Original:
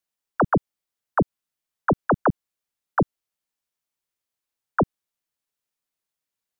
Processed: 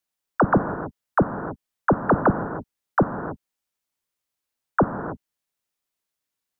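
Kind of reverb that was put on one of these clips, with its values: gated-style reverb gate 340 ms flat, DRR 7 dB; trim +1.5 dB

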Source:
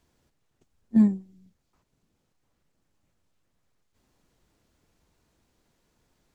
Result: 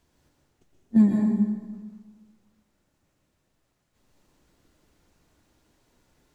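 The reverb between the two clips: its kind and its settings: plate-style reverb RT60 1.5 s, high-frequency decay 0.75×, pre-delay 105 ms, DRR -1.5 dB; trim +1 dB

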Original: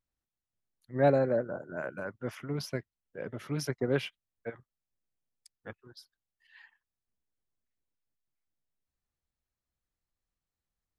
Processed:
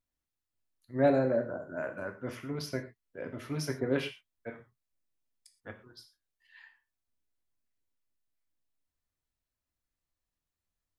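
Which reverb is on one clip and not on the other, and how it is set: gated-style reverb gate 150 ms falling, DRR 4 dB; trim -1.5 dB

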